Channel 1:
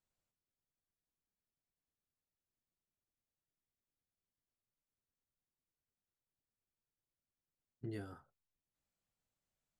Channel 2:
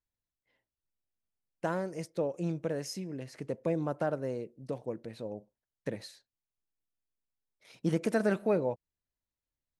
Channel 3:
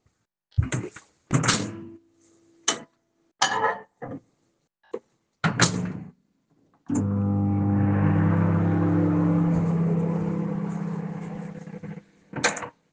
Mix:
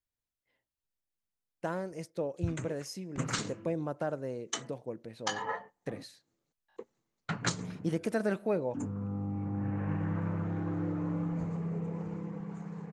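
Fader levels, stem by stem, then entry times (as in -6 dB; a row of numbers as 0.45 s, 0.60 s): -13.5 dB, -2.5 dB, -12.0 dB; 0.00 s, 0.00 s, 1.85 s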